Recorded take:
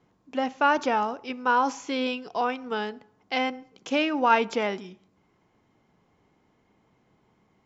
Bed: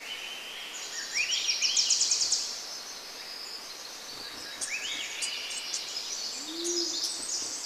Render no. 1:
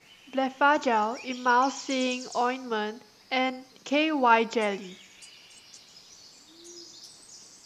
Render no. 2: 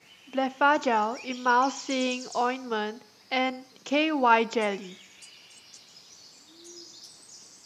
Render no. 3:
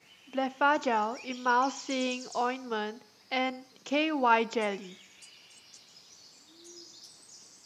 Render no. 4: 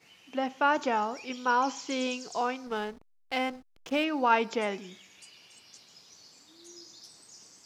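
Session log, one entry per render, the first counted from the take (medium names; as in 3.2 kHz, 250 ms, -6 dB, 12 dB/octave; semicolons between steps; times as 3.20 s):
add bed -16 dB
high-pass 75 Hz
trim -3.5 dB
2.67–4.04 s: hysteresis with a dead band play -39.5 dBFS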